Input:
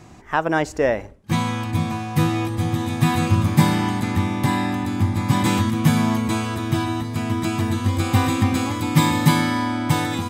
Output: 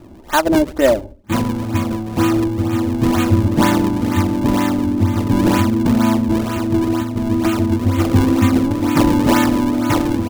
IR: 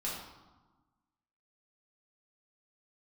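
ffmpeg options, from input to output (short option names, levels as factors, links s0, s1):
-filter_complex "[0:a]aecho=1:1:3.3:0.85,acrossover=split=850[s0][s1];[s1]acrusher=samples=40:mix=1:aa=0.000001:lfo=1:lforange=64:lforate=2.1[s2];[s0][s2]amix=inputs=2:normalize=0,volume=1.5"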